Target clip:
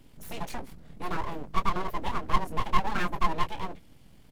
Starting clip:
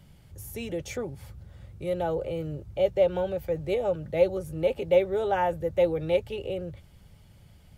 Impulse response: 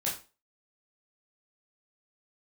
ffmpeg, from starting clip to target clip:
-af "aecho=1:1:21|44:0.473|0.282,atempo=1.8,aeval=exprs='abs(val(0))':c=same"

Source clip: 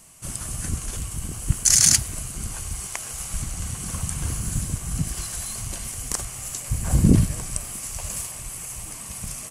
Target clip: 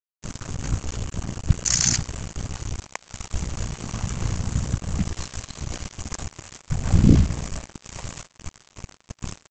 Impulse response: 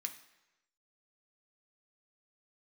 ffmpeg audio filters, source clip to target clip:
-af "tiltshelf=f=1500:g=3,aresample=16000,acrusher=bits=4:mix=0:aa=0.5,aresample=44100,aeval=exprs='val(0)*sin(2*PI*30*n/s)':c=same,volume=1.26"

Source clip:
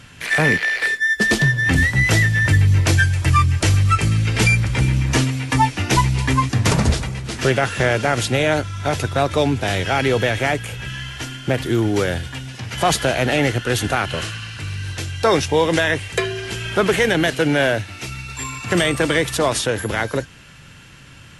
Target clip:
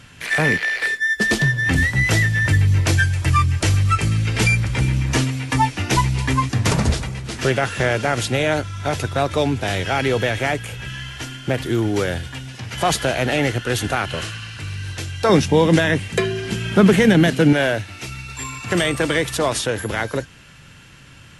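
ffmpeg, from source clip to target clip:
-filter_complex "[0:a]asettb=1/sr,asplit=3[s0][s1][s2];[s0]atrim=end=15.294[s3];[s1]atrim=start=15.29:end=17.53,asetpts=PTS-STARTPTS,afade=t=in:d=0.004:c=qsin,afade=t=out:st=2.236:d=0.004:c=qsin,equalizer=f=200:t=o:w=1.1:g=14[s4];[s2]atrim=start=17.526[s5];[s3][s4]acrossfade=d=0.004:c1=hsin:c2=qsin[s6];[s6][s5]acrossfade=d=0.004:c1=qsin:c2=hsin,volume=0.841"

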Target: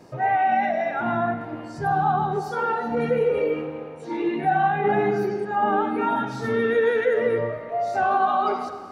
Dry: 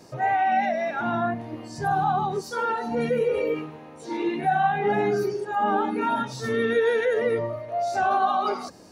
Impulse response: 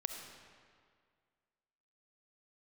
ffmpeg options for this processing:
-filter_complex "[0:a]asplit=2[s0][s1];[1:a]atrim=start_sample=2205,lowpass=3400[s2];[s1][s2]afir=irnorm=-1:irlink=0,volume=1.41[s3];[s0][s3]amix=inputs=2:normalize=0,volume=0.531"

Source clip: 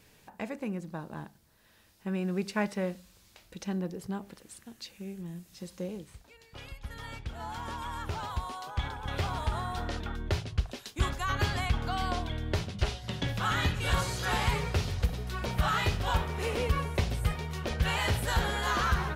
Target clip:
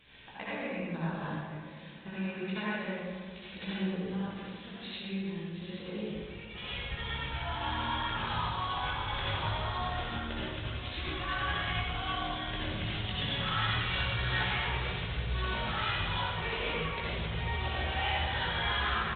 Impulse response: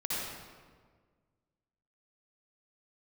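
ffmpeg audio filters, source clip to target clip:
-filter_complex "[0:a]asettb=1/sr,asplit=3[s0][s1][s2];[s0]atrim=end=11.044[s3];[s1]atrim=start=11.04:end=11.63,asetpts=PTS-STARTPTS,afade=t=in:d=0.004:c=qsin,afade=t=out:st=0.586:d=0.004:c=qsin,bandreject=f=50:t=h:w=6,bandreject=f=100:t=h:w=6,bandreject=f=150:t=h:w=6,bandreject=f=200:t=h:w=6,bandreject=f=250:t=h:w=6,bandreject=f=300:t=h:w=6,bandreject=f=350:t=h:w=6,bandreject=f=400:t=h:w=6,bandreject=f=450:t=h:w=6[s4];[s2]atrim=start=11.626[s5];[s3][s4]acrossfade=d=0.004:c1=hsin:c2=qsin[s6];[s6][s5]acrossfade=d=0.004:c1=qsin:c2=hsin,asettb=1/sr,asplit=3[s7][s8][s9];[s7]atrim=end=17.314[s10];[s8]atrim=start=17.31:end=18.13,asetpts=PTS-STARTPTS,afade=t=in:d=0.004:c=qsin,afade=t=out:st=0.816:d=0.004:c=qsin,equalizer=f=790:w=6.8:g=14.5[s11];[s9]atrim=start=18.126[s12];[s10][s11]acrossfade=d=0.004:c1=hsin:c2=qsin[s13];[s13][s12]acrossfade=d=0.004:c1=qsin:c2=hsin,acompressor=threshold=0.0158:ratio=12,crystalizer=i=7.5:c=0,asettb=1/sr,asplit=3[s14][s15][s16];[s14]atrim=end=14.734[s17];[s15]atrim=start=14.73:end=15.33,asetpts=PTS-STARTPTS,afade=t=in:d=0.004:c=qsin,afade=t=out:st=0.596:d=0.004:c=qsin,asoftclip=type=hard:threshold=0.0631[s18];[s16]atrim=start=15.326[s19];[s17][s18]acrossfade=d=0.004:c1=hsin:c2=qsin[s20];[s20][s19]acrossfade=d=0.004:c1=qsin:c2=hsin,flanger=delay=15.5:depth=4.7:speed=0.28,asplit=2[s21][s22];[s22]adelay=1031,lowpass=f=2700:p=1,volume=0.141,asplit=2[s23][s24];[s24]adelay=1031,lowpass=f=2700:p=1,volume=0.34,asplit=2[s25][s26];[s26]adelay=1031,lowpass=f=2700:p=1,volume=0.34[s27];[s21][s23][s25][s27]amix=inputs=4:normalize=0[s28];[1:a]atrim=start_sample=2205,asetrate=40131,aresample=44100[s29];[s28][s29]afir=irnorm=-1:irlink=0,aresample=8000,aresample=44100" -ar 48000 -c:a libopus -b:a 48k

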